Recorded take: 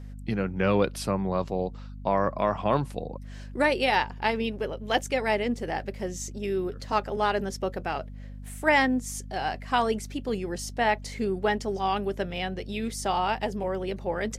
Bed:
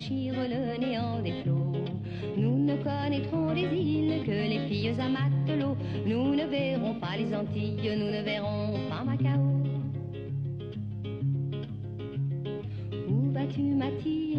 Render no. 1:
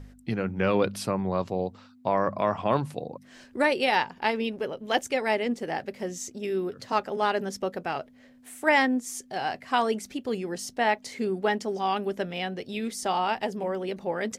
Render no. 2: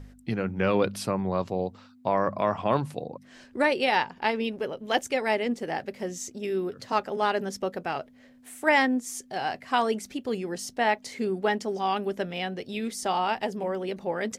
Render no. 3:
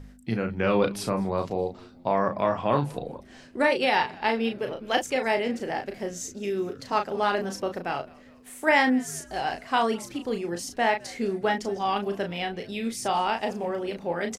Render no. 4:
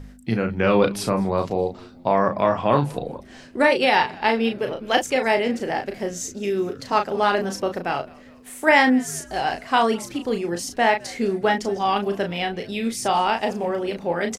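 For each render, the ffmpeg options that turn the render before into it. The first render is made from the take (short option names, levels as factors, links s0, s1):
-af "bandreject=f=50:t=h:w=4,bandreject=f=100:t=h:w=4,bandreject=f=150:t=h:w=4,bandreject=f=200:t=h:w=4"
-filter_complex "[0:a]asettb=1/sr,asplit=3[s0][s1][s2];[s0]atrim=end=3.034[s3];[s1]atrim=start=3.03:end=4.41,asetpts=PTS-STARTPTS,afade=t=in:d=0.004:c=qsin,afade=t=out:st=1.376:d=0.004:c=qsin,highshelf=f=10000:g=-6.5[s4];[s2]atrim=start=4.406[s5];[s3][s4]acrossfade=d=0.004:c1=hsin:c2=qsin[s6];[s6][s5]acrossfade=d=0.004:c1=qsin:c2=hsin"
-filter_complex "[0:a]asplit=2[s0][s1];[s1]adelay=35,volume=0.501[s2];[s0][s2]amix=inputs=2:normalize=0,asplit=5[s3][s4][s5][s6][s7];[s4]adelay=207,afreqshift=-100,volume=0.0668[s8];[s5]adelay=414,afreqshift=-200,volume=0.0367[s9];[s6]adelay=621,afreqshift=-300,volume=0.0202[s10];[s7]adelay=828,afreqshift=-400,volume=0.0111[s11];[s3][s8][s9][s10][s11]amix=inputs=5:normalize=0"
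-af "volume=1.78"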